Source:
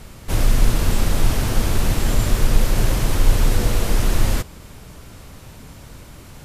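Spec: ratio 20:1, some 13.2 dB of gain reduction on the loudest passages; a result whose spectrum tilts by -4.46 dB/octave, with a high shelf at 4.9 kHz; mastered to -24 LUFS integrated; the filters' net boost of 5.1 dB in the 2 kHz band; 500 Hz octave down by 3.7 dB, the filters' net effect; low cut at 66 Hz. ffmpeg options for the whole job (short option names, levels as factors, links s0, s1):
-af "highpass=66,equalizer=f=500:t=o:g=-5,equalizer=f=2000:t=o:g=7.5,highshelf=f=4900:g=-5,acompressor=threshold=0.0282:ratio=20,volume=4.47"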